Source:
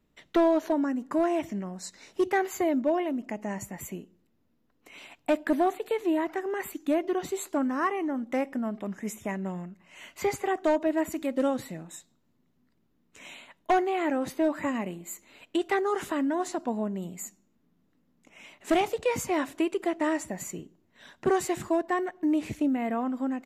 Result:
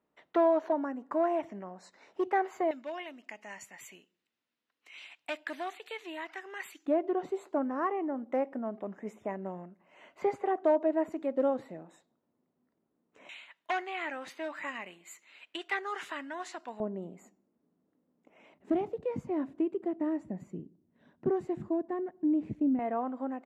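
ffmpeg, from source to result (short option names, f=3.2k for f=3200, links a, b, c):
-af "asetnsamples=n=441:p=0,asendcmd='2.71 bandpass f 2900;6.86 bandpass f 580;13.29 bandpass f 2300;16.8 bandpass f 490;18.54 bandpass f 200;22.79 bandpass f 670',bandpass=f=810:t=q:w=0.95:csg=0"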